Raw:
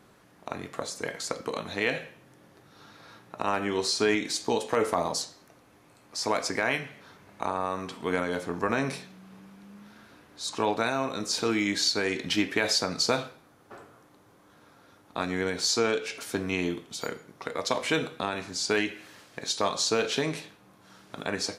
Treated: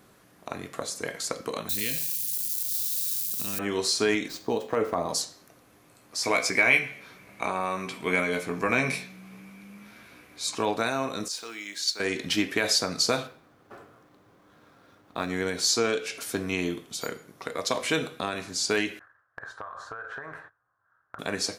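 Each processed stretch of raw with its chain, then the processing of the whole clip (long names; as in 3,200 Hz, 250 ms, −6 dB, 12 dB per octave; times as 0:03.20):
0:01.69–0:03.59: spike at every zero crossing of −29 dBFS + drawn EQ curve 210 Hz 0 dB, 880 Hz −22 dB, 4,600 Hz +4 dB
0:04.28–0:05.09: running median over 5 samples + high-shelf EQ 2,300 Hz −10 dB
0:06.23–0:10.55: parametric band 2,300 Hz +14.5 dB 0.24 octaves + double-tracking delay 16 ms −7 dB
0:11.28–0:12.00: high-pass filter 1,100 Hz 6 dB per octave + noise gate −25 dBFS, range −7 dB + bit-depth reduction 12 bits, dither triangular
0:13.27–0:15.30: running median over 5 samples + high-shelf EQ 6,500 Hz −6.5 dB
0:18.99–0:21.19: noise gate −49 dBFS, range −20 dB + drawn EQ curve 110 Hz 0 dB, 200 Hz −21 dB, 1,600 Hz +12 dB, 2,300 Hz −18 dB, 4,900 Hz −29 dB + downward compressor 16 to 1, threshold −34 dBFS
whole clip: high-shelf EQ 8,800 Hz +9.5 dB; notch filter 880 Hz, Q 14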